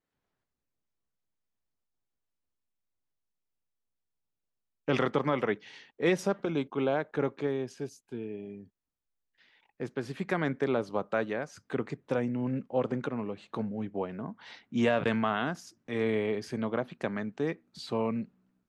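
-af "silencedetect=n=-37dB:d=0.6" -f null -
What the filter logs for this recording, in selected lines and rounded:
silence_start: 0.00
silence_end: 4.88 | silence_duration: 4.88
silence_start: 8.57
silence_end: 9.80 | silence_duration: 1.23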